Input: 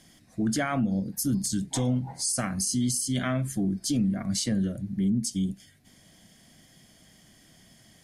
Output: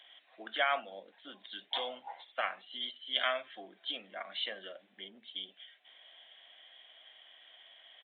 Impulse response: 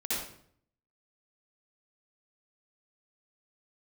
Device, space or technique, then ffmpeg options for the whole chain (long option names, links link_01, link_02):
musical greeting card: -af "aresample=8000,aresample=44100,highpass=frequency=600:width=0.5412,highpass=frequency=600:width=1.3066,equalizer=frequency=3100:width_type=o:width=0.59:gain=8.5"